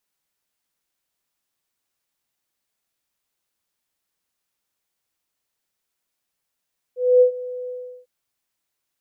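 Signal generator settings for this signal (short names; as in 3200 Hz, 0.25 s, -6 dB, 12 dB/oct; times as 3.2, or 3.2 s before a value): ADSR sine 499 Hz, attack 0.25 s, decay 0.1 s, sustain -19 dB, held 0.73 s, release 0.369 s -8.5 dBFS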